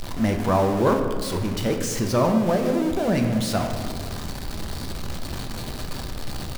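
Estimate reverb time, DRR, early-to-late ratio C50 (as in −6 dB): 1.6 s, 3.5 dB, 6.0 dB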